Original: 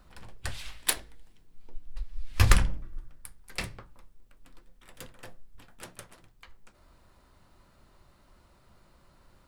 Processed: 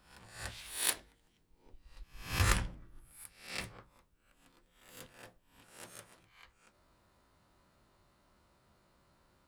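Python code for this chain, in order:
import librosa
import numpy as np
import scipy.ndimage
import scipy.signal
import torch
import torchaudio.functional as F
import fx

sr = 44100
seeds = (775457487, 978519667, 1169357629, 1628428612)

y = fx.spec_swells(x, sr, rise_s=0.51)
y = fx.highpass(y, sr, hz=82.0, slope=6)
y = y * 10.0 ** (-8.0 / 20.0)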